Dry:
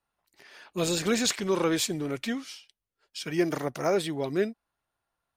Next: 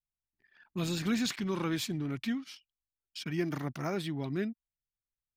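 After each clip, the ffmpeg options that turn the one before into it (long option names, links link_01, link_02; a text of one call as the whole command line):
ffmpeg -i in.wav -filter_complex "[0:a]anlmdn=0.0398,equalizer=frequency=125:width_type=o:width=1:gain=6,equalizer=frequency=250:width_type=o:width=1:gain=5,equalizer=frequency=500:width_type=o:width=1:gain=-11,equalizer=frequency=8000:width_type=o:width=1:gain=-8,asplit=2[link_01][link_02];[link_02]acompressor=threshold=-36dB:ratio=6,volume=-1dB[link_03];[link_01][link_03]amix=inputs=2:normalize=0,volume=-7dB" out.wav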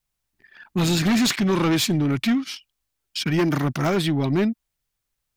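ffmpeg -i in.wav -af "aeval=exprs='0.106*sin(PI/2*2.24*val(0)/0.106)':channel_layout=same,volume=4dB" out.wav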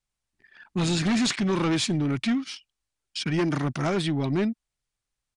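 ffmpeg -i in.wav -af "aresample=22050,aresample=44100,volume=-4dB" out.wav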